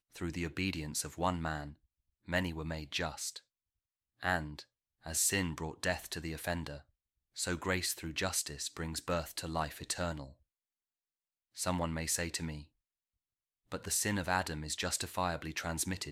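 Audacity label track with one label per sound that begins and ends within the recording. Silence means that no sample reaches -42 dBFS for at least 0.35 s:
2.280000	3.370000	sound
4.230000	4.620000	sound
5.060000	6.780000	sound
7.370000	10.240000	sound
11.570000	12.610000	sound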